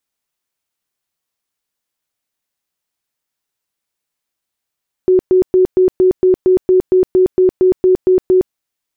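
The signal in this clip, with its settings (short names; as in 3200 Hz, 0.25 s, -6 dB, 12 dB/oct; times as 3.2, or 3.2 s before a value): tone bursts 370 Hz, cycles 41, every 0.23 s, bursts 15, -6.5 dBFS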